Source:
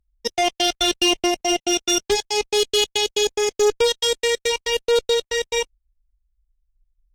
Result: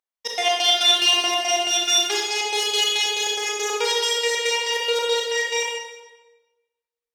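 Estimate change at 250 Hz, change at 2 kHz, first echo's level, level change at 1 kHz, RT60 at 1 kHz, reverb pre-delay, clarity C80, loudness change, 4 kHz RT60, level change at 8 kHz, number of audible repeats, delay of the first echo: −13.0 dB, +3.0 dB, no echo audible, +1.0 dB, 1.1 s, 27 ms, 3.5 dB, +0.5 dB, 0.95 s, +0.5 dB, no echo audible, no echo audible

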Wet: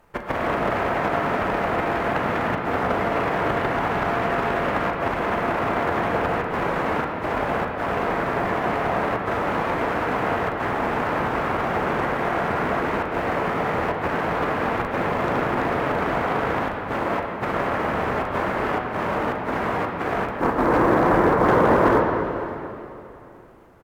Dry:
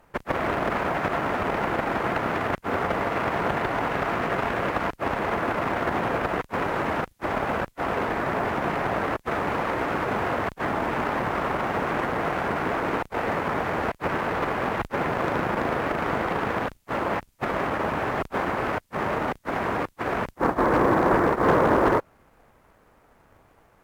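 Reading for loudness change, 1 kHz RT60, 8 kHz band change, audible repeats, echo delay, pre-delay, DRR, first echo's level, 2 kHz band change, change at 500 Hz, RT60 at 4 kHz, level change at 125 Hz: +3.0 dB, 2.8 s, can't be measured, 1, 561 ms, 9 ms, 1.0 dB, −19.0 dB, +2.5 dB, +3.0 dB, 2.7 s, +3.0 dB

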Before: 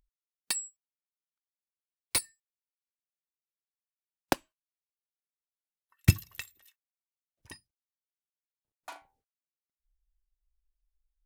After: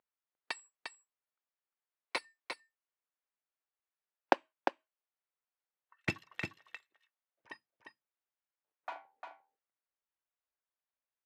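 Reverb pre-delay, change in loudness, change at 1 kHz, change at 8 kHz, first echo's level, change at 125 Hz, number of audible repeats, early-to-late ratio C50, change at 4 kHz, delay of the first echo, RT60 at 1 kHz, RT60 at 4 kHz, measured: no reverb audible, −8.5 dB, +3.5 dB, −21.0 dB, −6.0 dB, −19.0 dB, 1, no reverb audible, −7.5 dB, 351 ms, no reverb audible, no reverb audible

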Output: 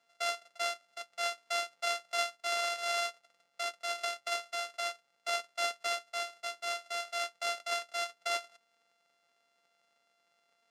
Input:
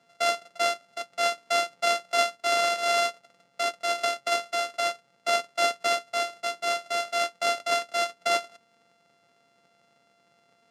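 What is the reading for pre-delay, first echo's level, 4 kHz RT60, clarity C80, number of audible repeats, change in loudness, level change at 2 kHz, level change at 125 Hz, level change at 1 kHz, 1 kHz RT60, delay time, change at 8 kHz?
no reverb audible, no echo audible, no reverb audible, no reverb audible, no echo audible, −8.5 dB, −7.5 dB, can't be measured, −9.5 dB, no reverb audible, no echo audible, −6.5 dB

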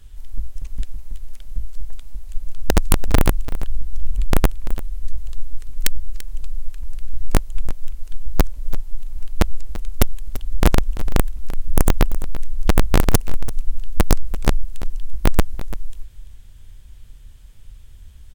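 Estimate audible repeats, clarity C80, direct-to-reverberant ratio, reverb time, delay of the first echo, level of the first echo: 1, no reverb audible, no reverb audible, no reverb audible, 339 ms, −15.5 dB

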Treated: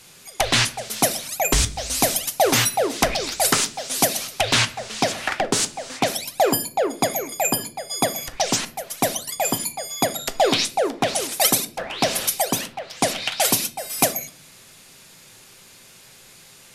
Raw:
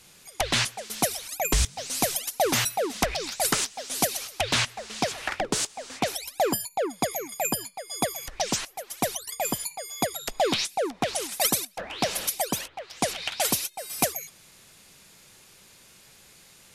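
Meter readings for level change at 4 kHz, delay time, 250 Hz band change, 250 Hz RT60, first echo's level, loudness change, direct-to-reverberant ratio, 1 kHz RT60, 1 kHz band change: +6.0 dB, no echo audible, +6.0 dB, 0.85 s, no echo audible, +6.0 dB, 9.5 dB, 0.40 s, +6.0 dB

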